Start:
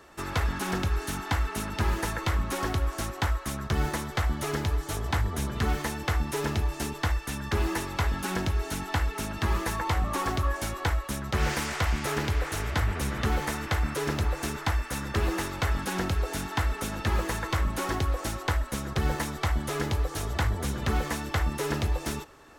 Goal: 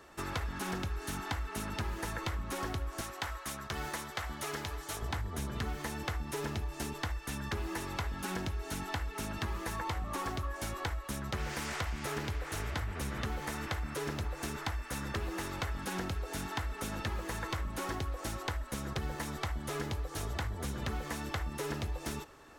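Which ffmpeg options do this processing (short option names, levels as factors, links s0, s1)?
-filter_complex "[0:a]asettb=1/sr,asplit=3[s0][s1][s2];[s0]atrim=end=3.014[s3];[s1]atrim=start=3.01:end=5.02,asetpts=PTS-STARTPTS,afade=t=in:d=0.004:c=qsin,afade=t=out:st=2.006:d=0.004:c=qsin,lowshelf=f=410:g=-11[s4];[s2]atrim=start=5.016[s5];[s3][s4]acrossfade=d=0.004:c1=hsin:c2=qsin[s6];[s6][s5]acrossfade=d=0.004:c1=qsin:c2=hsin,acompressor=threshold=0.0316:ratio=6,volume=0.708"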